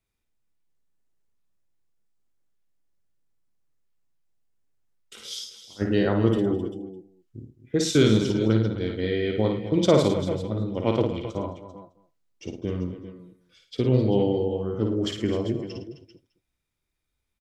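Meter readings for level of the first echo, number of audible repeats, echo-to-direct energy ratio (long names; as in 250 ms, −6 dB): −4.5 dB, 8, −3.0 dB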